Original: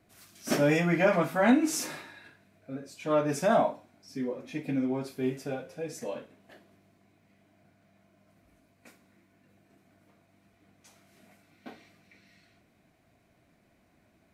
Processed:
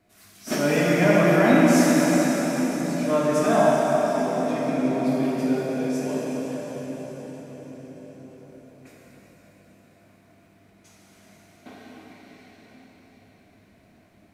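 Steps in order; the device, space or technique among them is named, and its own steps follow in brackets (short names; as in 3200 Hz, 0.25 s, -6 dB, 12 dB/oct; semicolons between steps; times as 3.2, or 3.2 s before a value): cathedral (reverb RT60 6.2 s, pre-delay 3 ms, DRR -6.5 dB)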